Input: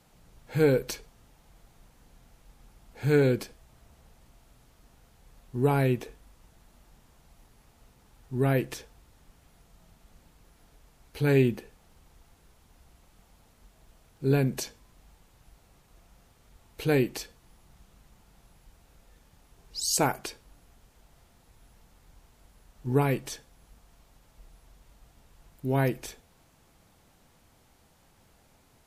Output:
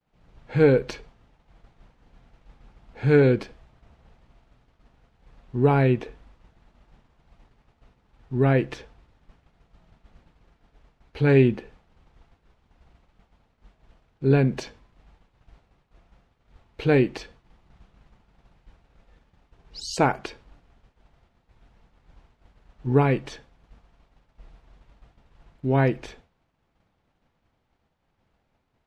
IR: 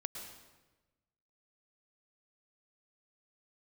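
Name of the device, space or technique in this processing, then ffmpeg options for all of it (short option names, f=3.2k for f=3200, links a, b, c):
hearing-loss simulation: -af "lowpass=3.2k,agate=range=-33dB:threshold=-52dB:ratio=3:detection=peak,volume=5dB"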